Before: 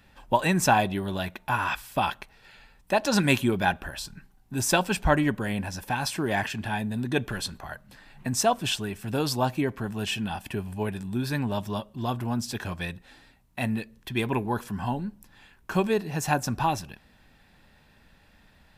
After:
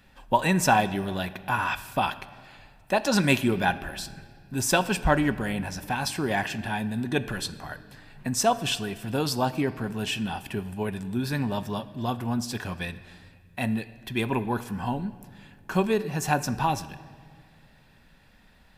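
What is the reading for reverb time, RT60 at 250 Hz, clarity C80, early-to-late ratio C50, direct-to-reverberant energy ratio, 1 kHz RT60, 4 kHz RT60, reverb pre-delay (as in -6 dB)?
2.0 s, 2.2 s, 16.0 dB, 15.0 dB, 11.5 dB, 1.8 s, 1.6 s, 4 ms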